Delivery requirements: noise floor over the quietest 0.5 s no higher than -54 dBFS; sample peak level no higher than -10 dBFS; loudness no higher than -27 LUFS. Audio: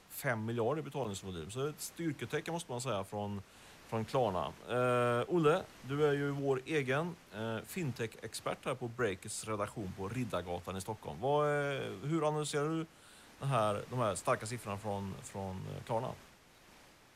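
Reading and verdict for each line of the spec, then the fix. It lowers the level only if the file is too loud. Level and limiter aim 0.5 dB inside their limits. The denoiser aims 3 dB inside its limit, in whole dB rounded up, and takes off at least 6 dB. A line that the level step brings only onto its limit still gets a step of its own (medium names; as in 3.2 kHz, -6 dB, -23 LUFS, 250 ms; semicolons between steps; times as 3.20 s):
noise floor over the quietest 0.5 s -61 dBFS: pass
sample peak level -19.0 dBFS: pass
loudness -36.5 LUFS: pass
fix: none needed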